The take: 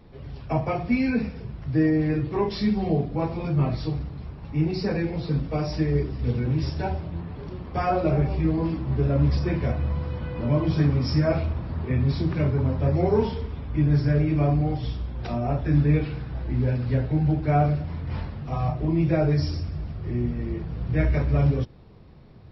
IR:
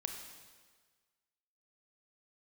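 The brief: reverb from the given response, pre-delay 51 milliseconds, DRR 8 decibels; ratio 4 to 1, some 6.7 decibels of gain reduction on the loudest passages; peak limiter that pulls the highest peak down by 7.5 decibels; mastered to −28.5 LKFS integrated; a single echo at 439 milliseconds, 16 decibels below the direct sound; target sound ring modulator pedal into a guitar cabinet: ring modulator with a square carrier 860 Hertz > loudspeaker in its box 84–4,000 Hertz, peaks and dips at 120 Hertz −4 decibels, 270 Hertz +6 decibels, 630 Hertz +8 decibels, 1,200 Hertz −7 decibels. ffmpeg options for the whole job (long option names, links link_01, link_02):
-filter_complex "[0:a]acompressor=threshold=-24dB:ratio=4,alimiter=limit=-22dB:level=0:latency=1,aecho=1:1:439:0.158,asplit=2[link_01][link_02];[1:a]atrim=start_sample=2205,adelay=51[link_03];[link_02][link_03]afir=irnorm=-1:irlink=0,volume=-7.5dB[link_04];[link_01][link_04]amix=inputs=2:normalize=0,aeval=exprs='val(0)*sgn(sin(2*PI*860*n/s))':channel_layout=same,highpass=84,equalizer=frequency=120:width_type=q:width=4:gain=-4,equalizer=frequency=270:width_type=q:width=4:gain=6,equalizer=frequency=630:width_type=q:width=4:gain=8,equalizer=frequency=1200:width_type=q:width=4:gain=-7,lowpass=frequency=4000:width=0.5412,lowpass=frequency=4000:width=1.3066,volume=-0.5dB"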